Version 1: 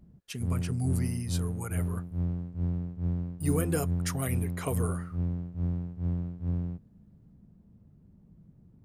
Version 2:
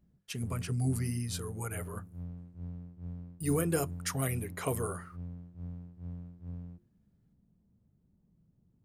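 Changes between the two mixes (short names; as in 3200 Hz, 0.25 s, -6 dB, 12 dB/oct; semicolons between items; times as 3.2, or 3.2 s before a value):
background -11.5 dB; master: add notches 50/100/150/200/250/300/350 Hz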